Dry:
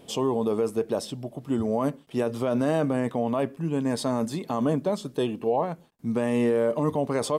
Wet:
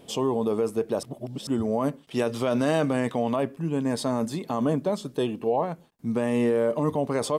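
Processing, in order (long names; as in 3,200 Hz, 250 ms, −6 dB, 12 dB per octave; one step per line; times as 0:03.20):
0:01.03–0:01.47: reverse
0:02.03–0:03.36: parametric band 4,200 Hz +7 dB 2.9 octaves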